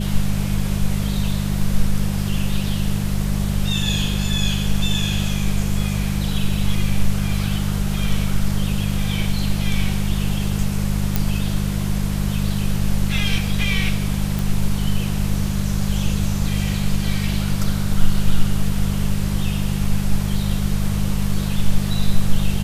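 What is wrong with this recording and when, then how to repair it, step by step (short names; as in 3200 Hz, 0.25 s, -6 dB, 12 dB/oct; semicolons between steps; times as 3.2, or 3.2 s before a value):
hum 50 Hz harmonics 4 -22 dBFS
11.16 pop
14.39 pop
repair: de-click; de-hum 50 Hz, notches 4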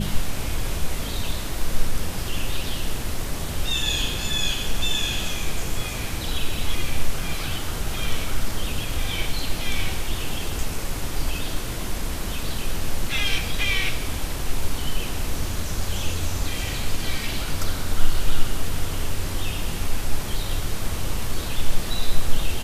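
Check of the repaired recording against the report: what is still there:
none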